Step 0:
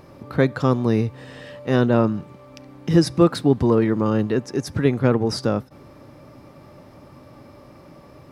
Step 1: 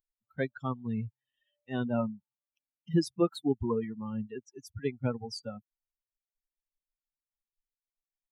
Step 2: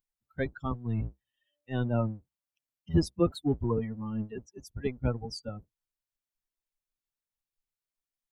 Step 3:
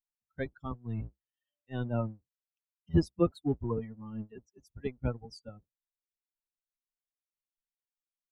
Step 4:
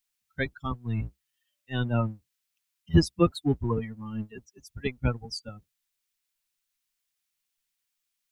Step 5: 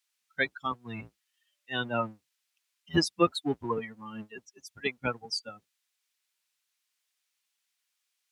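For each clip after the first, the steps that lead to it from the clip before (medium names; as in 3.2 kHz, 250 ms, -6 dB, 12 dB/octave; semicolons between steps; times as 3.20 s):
expander on every frequency bin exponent 3; trim -7.5 dB
octave divider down 1 oct, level -1 dB
upward expansion 1.5:1, over -48 dBFS
FFT filter 150 Hz 0 dB, 600 Hz -4 dB, 2.4 kHz +8 dB; trim +6.5 dB
frequency weighting A; trim +3 dB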